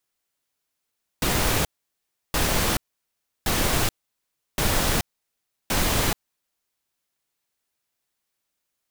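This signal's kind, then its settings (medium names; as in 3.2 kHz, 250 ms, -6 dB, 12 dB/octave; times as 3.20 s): noise bursts pink, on 0.43 s, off 0.69 s, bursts 5, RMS -22 dBFS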